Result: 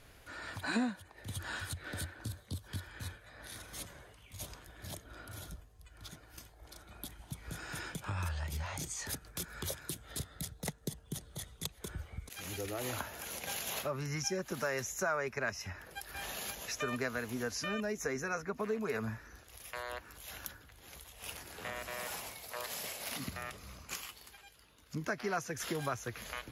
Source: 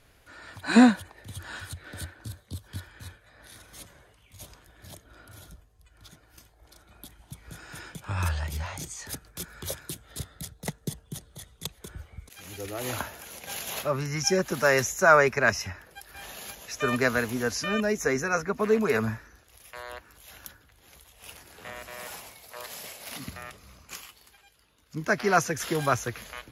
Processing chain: compression 3:1, threshold -39 dBFS, peak gain reduction 19.5 dB; trim +1.5 dB

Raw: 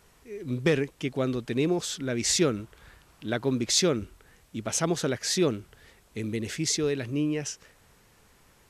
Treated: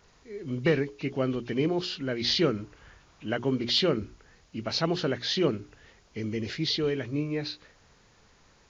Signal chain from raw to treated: knee-point frequency compression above 2 kHz 1.5:1; hum notches 60/120/180/240/300/360/420 Hz

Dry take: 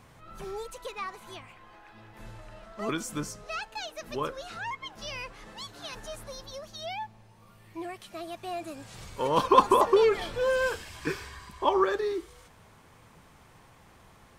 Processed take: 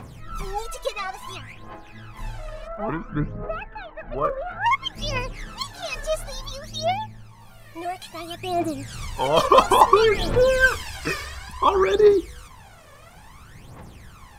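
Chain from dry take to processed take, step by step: 2.67–4.66 s: low-pass 1.9 kHz 24 dB/octave; phaser 0.58 Hz, delay 1.8 ms, feedback 74%; trim +6 dB

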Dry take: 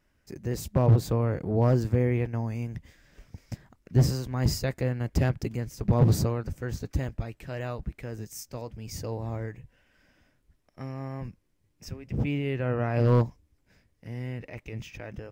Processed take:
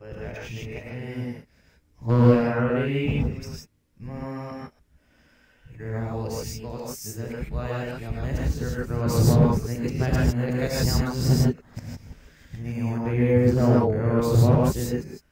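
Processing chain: reverse the whole clip; gated-style reverb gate 180 ms rising, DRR -4 dB

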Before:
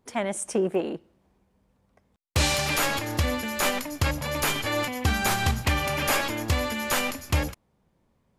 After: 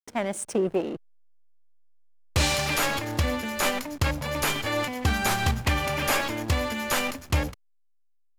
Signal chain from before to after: hysteresis with a dead band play -36 dBFS

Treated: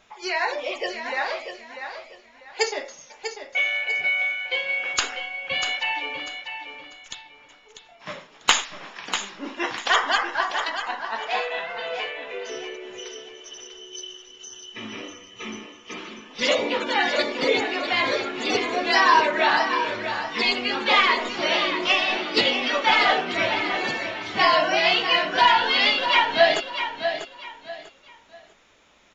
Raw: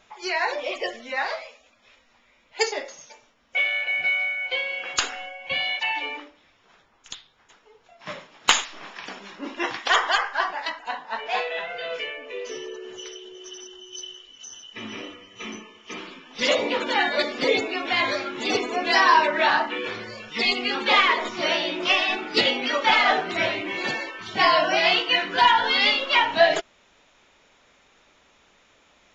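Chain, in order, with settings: feedback delay 644 ms, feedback 28%, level -8.5 dB

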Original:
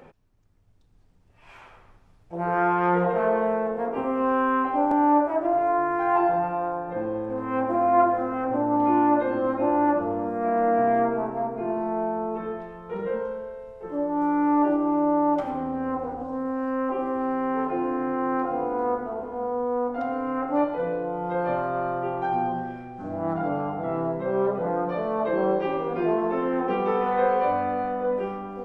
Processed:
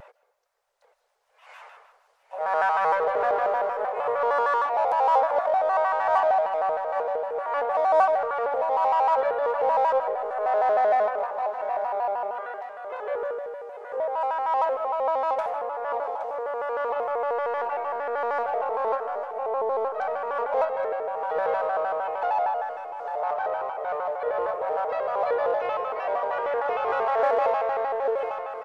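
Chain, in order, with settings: elliptic high-pass 520 Hz, stop band 40 dB; peaking EQ 2.8 kHz -3 dB; in parallel at -7 dB: saturation -29.5 dBFS, distortion -8 dB; on the sum: feedback delay 823 ms, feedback 36%, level -11.5 dB; on a send at -17 dB: reverberation RT60 0.75 s, pre-delay 110 ms; on the sum: vibrato with a chosen wave square 6.5 Hz, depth 160 cents

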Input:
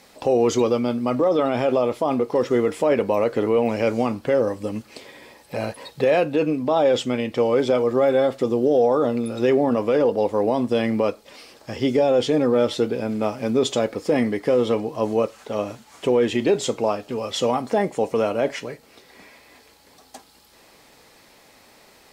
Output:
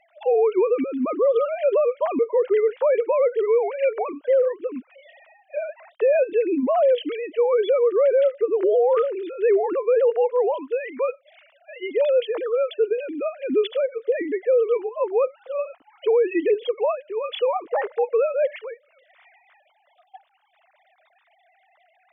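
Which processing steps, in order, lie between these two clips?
formants replaced by sine waves; 10.54–12.77 s: high-pass 560 Hz 12 dB/octave; peak limiter -14 dBFS, peak gain reduction 7.5 dB; trim +1.5 dB

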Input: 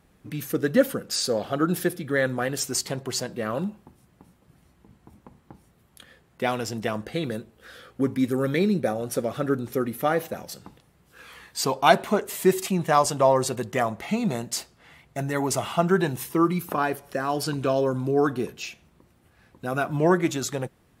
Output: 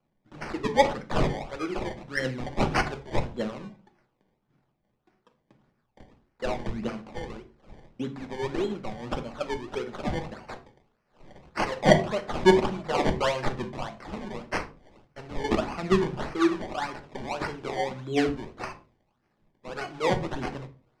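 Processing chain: high-pass 160 Hz; treble shelf 2.5 kHz +11 dB; in parallel at -1 dB: compression, threshold -33 dBFS, peak gain reduction 22.5 dB; on the sum: phaser 0.88 Hz, delay 2.9 ms, feedback 67%; decimation with a swept rate 23×, swing 100% 1.7 Hz; distance through air 110 m; on a send at -6.5 dB: reverberation RT60 0.35 s, pre-delay 3 ms; on the sum: three bands expanded up and down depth 40%; trim -11.5 dB

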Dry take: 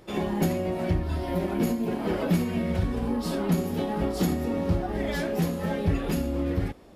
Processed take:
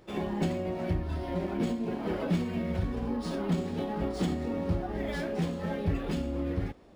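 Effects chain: decimation joined by straight lines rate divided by 3×; trim -4.5 dB

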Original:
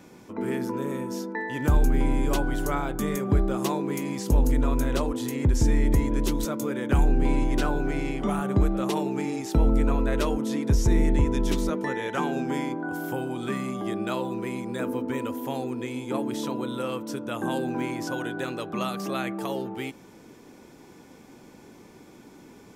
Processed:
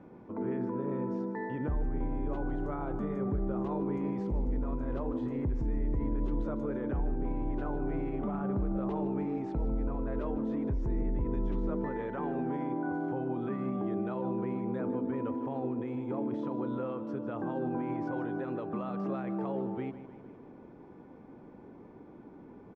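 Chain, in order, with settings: peak limiter -23.5 dBFS, peak gain reduction 11.5 dB; low-pass 1.1 kHz 12 dB/octave; feedback delay 153 ms, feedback 59%, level -14 dB; trim -1.5 dB

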